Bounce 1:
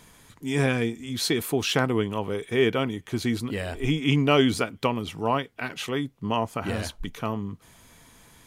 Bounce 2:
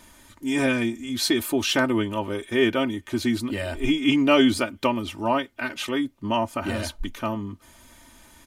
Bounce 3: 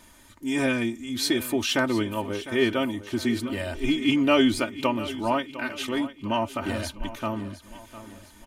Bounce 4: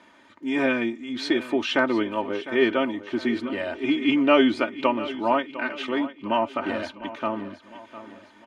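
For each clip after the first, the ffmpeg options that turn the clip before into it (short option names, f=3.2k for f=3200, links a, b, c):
-af "aecho=1:1:3.3:0.82"
-af "aecho=1:1:704|1408|2112|2816:0.178|0.0836|0.0393|0.0185,volume=-2dB"
-af "highpass=260,lowpass=2.7k,volume=3.5dB"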